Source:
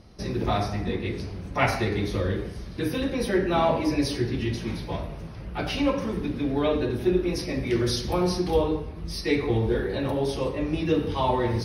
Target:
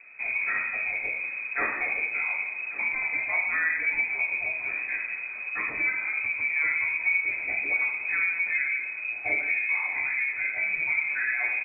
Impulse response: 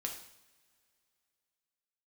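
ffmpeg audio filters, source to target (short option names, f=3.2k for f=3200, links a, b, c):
-filter_complex "[0:a]bandreject=f=53.45:t=h:w=4,bandreject=f=106.9:t=h:w=4,bandreject=f=160.35:t=h:w=4,bandreject=f=213.8:t=h:w=4,bandreject=f=267.25:t=h:w=4,bandreject=f=320.7:t=h:w=4,bandreject=f=374.15:t=h:w=4,bandreject=f=427.6:t=h:w=4,bandreject=f=481.05:t=h:w=4,bandreject=f=534.5:t=h:w=4,bandreject=f=587.95:t=h:w=4,bandreject=f=641.4:t=h:w=4,bandreject=f=694.85:t=h:w=4,bandreject=f=748.3:t=h:w=4,bandreject=f=801.75:t=h:w=4,bandreject=f=855.2:t=h:w=4,bandreject=f=908.65:t=h:w=4,bandreject=f=962.1:t=h:w=4,bandreject=f=1.01555k:t=h:w=4,bandreject=f=1.069k:t=h:w=4,bandreject=f=1.12245k:t=h:w=4,bandreject=f=1.1759k:t=h:w=4,bandreject=f=1.22935k:t=h:w=4,bandreject=f=1.2828k:t=h:w=4,bandreject=f=1.33625k:t=h:w=4,bandreject=f=1.3897k:t=h:w=4,bandreject=f=1.44315k:t=h:w=4,bandreject=f=1.4966k:t=h:w=4,bandreject=f=1.55005k:t=h:w=4,bandreject=f=1.6035k:t=h:w=4,bandreject=f=1.65695k:t=h:w=4,bandreject=f=1.7104k:t=h:w=4,acompressor=threshold=-31dB:ratio=2,aecho=1:1:1141:0.112,asplit=2[a][b];[1:a]atrim=start_sample=2205[c];[b][c]afir=irnorm=-1:irlink=0,volume=1.5dB[d];[a][d]amix=inputs=2:normalize=0,lowpass=f=2.2k:t=q:w=0.5098,lowpass=f=2.2k:t=q:w=0.6013,lowpass=f=2.2k:t=q:w=0.9,lowpass=f=2.2k:t=q:w=2.563,afreqshift=-2600,volume=-3.5dB"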